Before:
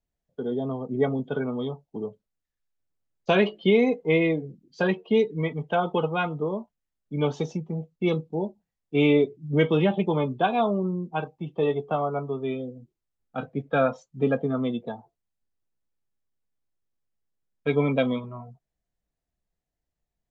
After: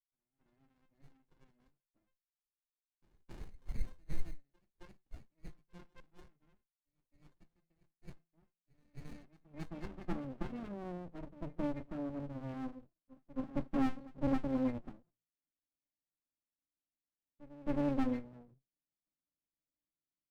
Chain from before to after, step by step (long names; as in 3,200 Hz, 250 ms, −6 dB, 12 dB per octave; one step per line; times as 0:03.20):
hum removal 55.42 Hz, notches 3
high-pass filter sweep 2,000 Hz → 300 Hz, 0:08.74–0:10.51
octave-band graphic EQ 125/250/500/1,000/2,000/4,000 Hz −6/+6/−5/−10/+6/+8 dB
rotating-speaker cabinet horn 6 Hz, later 1.1 Hz, at 0:12.71
resonances in every octave C, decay 0.12 s
noise that follows the level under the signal 35 dB
high-frequency loss of the air 280 metres
comb filter 5.7 ms, depth 78%
echo ahead of the sound 268 ms −20.5 dB
low-pass that shuts in the quiet parts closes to 1,900 Hz, open at −29.5 dBFS
windowed peak hold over 65 samples
level +2 dB